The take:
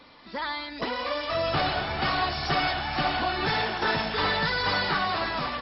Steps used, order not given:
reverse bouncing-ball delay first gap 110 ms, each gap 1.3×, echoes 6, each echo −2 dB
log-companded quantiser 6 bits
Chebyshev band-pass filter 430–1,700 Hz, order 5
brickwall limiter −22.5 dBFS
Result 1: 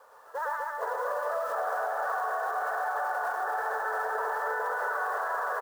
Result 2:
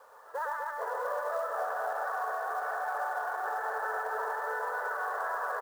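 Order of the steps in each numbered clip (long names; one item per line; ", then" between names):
Chebyshev band-pass filter, then log-companded quantiser, then reverse bouncing-ball delay, then brickwall limiter
reverse bouncing-ball delay, then brickwall limiter, then Chebyshev band-pass filter, then log-companded quantiser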